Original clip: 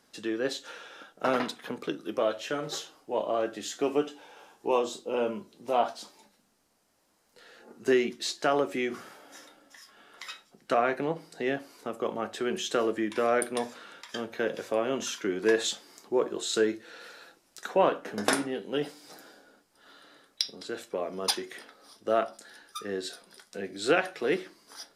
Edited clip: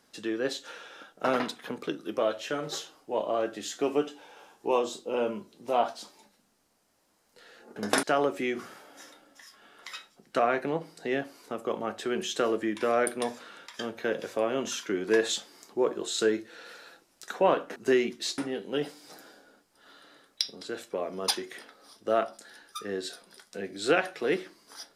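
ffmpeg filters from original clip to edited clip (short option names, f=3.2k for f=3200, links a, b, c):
-filter_complex "[0:a]asplit=5[a][b][c][d][e];[a]atrim=end=7.762[f];[b]atrim=start=18.108:end=18.382[g];[c]atrim=start=8.378:end=18.112[h];[d]atrim=start=7.758:end=8.382[i];[e]atrim=start=18.378[j];[f][g]acrossfade=d=0.004:c1=hsin:c2=hsin[k];[k][h]acrossfade=d=0.004:c1=hsin:c2=hsin[l];[l][i]acrossfade=d=0.004:c1=hsin:c2=hsin[m];[m][j]acrossfade=d=0.004:c1=hsin:c2=hsin"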